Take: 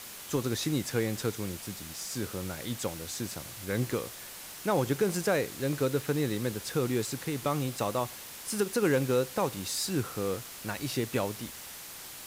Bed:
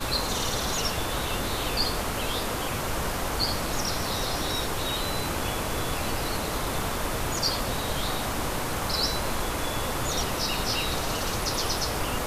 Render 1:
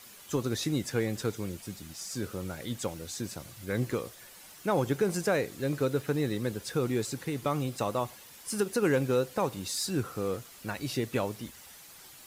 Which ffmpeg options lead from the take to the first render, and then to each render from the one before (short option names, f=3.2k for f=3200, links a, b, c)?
-af "afftdn=nr=9:nf=-45"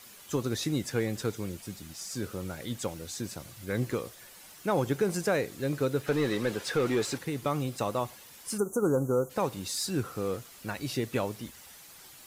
-filter_complex "[0:a]asplit=3[a][b][c];[a]afade=t=out:st=6.06:d=0.02[d];[b]asplit=2[e][f];[f]highpass=f=720:p=1,volume=17dB,asoftclip=type=tanh:threshold=-17.5dB[g];[e][g]amix=inputs=2:normalize=0,lowpass=f=2.8k:p=1,volume=-6dB,afade=t=in:st=6.06:d=0.02,afade=t=out:st=7.17:d=0.02[h];[c]afade=t=in:st=7.17:d=0.02[i];[d][h][i]amix=inputs=3:normalize=0,asplit=3[j][k][l];[j]afade=t=out:st=8.57:d=0.02[m];[k]asuperstop=centerf=3000:order=20:qfactor=0.64,afade=t=in:st=8.57:d=0.02,afade=t=out:st=9.29:d=0.02[n];[l]afade=t=in:st=9.29:d=0.02[o];[m][n][o]amix=inputs=3:normalize=0"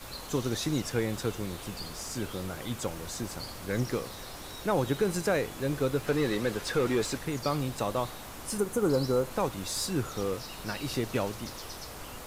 -filter_complex "[1:a]volume=-15dB[a];[0:a][a]amix=inputs=2:normalize=0"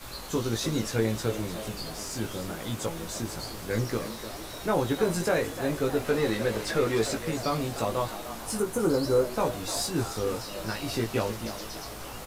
-filter_complex "[0:a]asplit=2[a][b];[b]adelay=18,volume=-3dB[c];[a][c]amix=inputs=2:normalize=0,asplit=7[d][e][f][g][h][i][j];[e]adelay=302,afreqshift=100,volume=-12dB[k];[f]adelay=604,afreqshift=200,volume=-17.5dB[l];[g]adelay=906,afreqshift=300,volume=-23dB[m];[h]adelay=1208,afreqshift=400,volume=-28.5dB[n];[i]adelay=1510,afreqshift=500,volume=-34.1dB[o];[j]adelay=1812,afreqshift=600,volume=-39.6dB[p];[d][k][l][m][n][o][p]amix=inputs=7:normalize=0"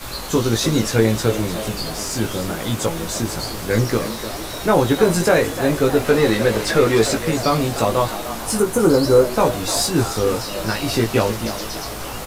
-af "volume=10.5dB"